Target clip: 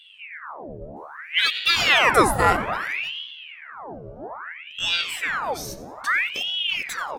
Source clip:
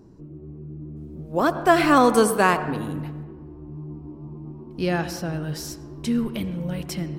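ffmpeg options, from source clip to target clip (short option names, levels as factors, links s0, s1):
-filter_complex "[0:a]afftfilt=real='re*pow(10,13/40*sin(2*PI*(1.8*log(max(b,1)*sr/1024/100)/log(2)-(0.78)*(pts-256)/sr)))':imag='im*pow(10,13/40*sin(2*PI*(1.8*log(max(b,1)*sr/1024/100)/log(2)-(0.78)*(pts-256)/sr)))':win_size=1024:overlap=0.75,asplit=2[s0][s1];[s1]asoftclip=type=tanh:threshold=0.158,volume=0.316[s2];[s0][s2]amix=inputs=2:normalize=0,asplit=4[s3][s4][s5][s6];[s4]adelay=91,afreqshift=55,volume=0.112[s7];[s5]adelay=182,afreqshift=110,volume=0.0437[s8];[s6]adelay=273,afreqshift=165,volume=0.017[s9];[s3][s7][s8][s9]amix=inputs=4:normalize=0,aeval=exprs='val(0)*sin(2*PI*1700*n/s+1700*0.85/0.61*sin(2*PI*0.61*n/s))':c=same,volume=0.891"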